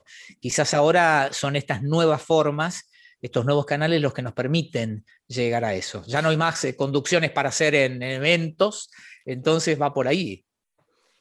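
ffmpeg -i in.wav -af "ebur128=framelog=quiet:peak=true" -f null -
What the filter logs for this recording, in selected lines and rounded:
Integrated loudness:
  I:         -22.4 LUFS
  Threshold: -33.0 LUFS
Loudness range:
  LRA:         3.2 LU
  Threshold: -43.1 LUFS
  LRA low:   -25.0 LUFS
  LRA high:  -21.9 LUFS
True peak:
  Peak:       -3.4 dBFS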